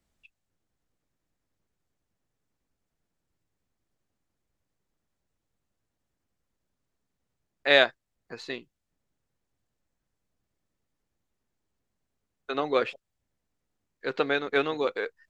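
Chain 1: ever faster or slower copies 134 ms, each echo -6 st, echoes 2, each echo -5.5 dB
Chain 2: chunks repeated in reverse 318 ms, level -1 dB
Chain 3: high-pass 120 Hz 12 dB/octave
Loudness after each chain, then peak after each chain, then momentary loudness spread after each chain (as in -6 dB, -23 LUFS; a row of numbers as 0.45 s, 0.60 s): -27.0 LUFS, -25.5 LUFS, -26.5 LUFS; -4.0 dBFS, -4.0 dBFS, -4.5 dBFS; 21 LU, 15 LU, 17 LU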